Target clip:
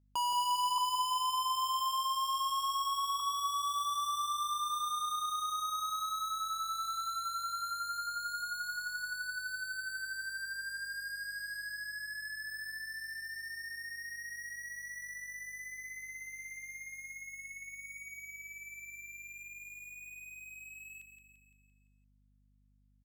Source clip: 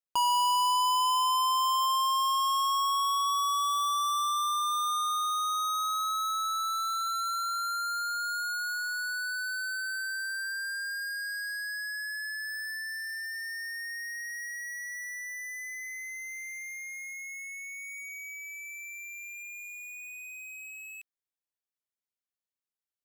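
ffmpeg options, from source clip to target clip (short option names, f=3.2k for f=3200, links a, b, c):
-filter_complex "[0:a]asettb=1/sr,asplit=3[a][b][c];[a]atrim=end=0.784[d];[b]atrim=start=0.78:end=3.2,asetpts=PTS-STARTPTS,afade=t=in:d=0.004:c=qsin,afade=t=out:st=2.416:d=0.004:c=qsin,highpass=f=860:w=0.5412,highpass=f=860:w=1.3066[e];[c]atrim=start=3.196[f];[d][e]acrossfade=d=0.004:c1=hsin:c2=qsin[g];[g][f]acrossfade=d=0.004:c1=qsin:c2=hsin,aecho=1:1:171|342|513|684|855|1026:0.398|0.211|0.112|0.0593|0.0314|0.0166,aeval=exprs='val(0)+0.000891*(sin(2*PI*50*n/s)+sin(2*PI*2*50*n/s)/2+sin(2*PI*3*50*n/s)/3+sin(2*PI*4*50*n/s)/4+sin(2*PI*5*50*n/s)/5)':c=same,volume=-6.5dB"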